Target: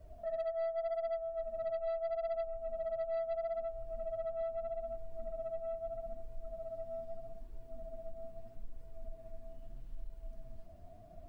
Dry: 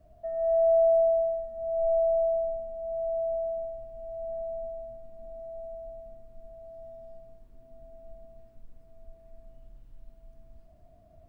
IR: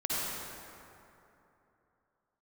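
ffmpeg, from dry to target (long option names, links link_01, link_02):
-af "alimiter=level_in=1.5dB:limit=-24dB:level=0:latency=1,volume=-1.5dB,acompressor=threshold=-41dB:ratio=3,flanger=delay=2:depth=10:regen=12:speed=0.79:shape=sinusoidal,aeval=exprs='0.0178*(cos(1*acos(clip(val(0)/0.0178,-1,1)))-cos(1*PI/2))+0.00158*(cos(2*acos(clip(val(0)/0.0178,-1,1)))-cos(2*PI/2))+0.001*(cos(5*acos(clip(val(0)/0.0178,-1,1)))-cos(5*PI/2))+0.000501*(cos(7*acos(clip(val(0)/0.0178,-1,1)))-cos(7*PI/2))':channel_layout=same,volume=5.5dB"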